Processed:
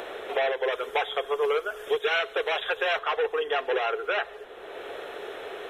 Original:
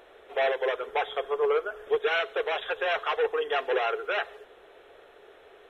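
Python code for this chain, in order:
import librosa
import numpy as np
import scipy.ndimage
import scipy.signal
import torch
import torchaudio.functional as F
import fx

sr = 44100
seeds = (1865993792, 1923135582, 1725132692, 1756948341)

y = fx.high_shelf(x, sr, hz=3500.0, db=11.5, at=(0.72, 2.99))
y = fx.band_squash(y, sr, depth_pct=70)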